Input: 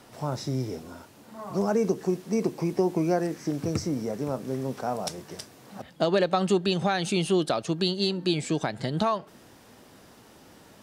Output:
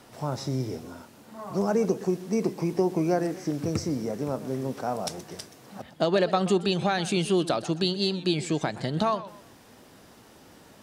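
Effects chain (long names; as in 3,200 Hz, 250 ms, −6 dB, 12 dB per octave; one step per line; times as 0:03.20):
feedback echo with a swinging delay time 126 ms, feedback 31%, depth 174 cents, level −16 dB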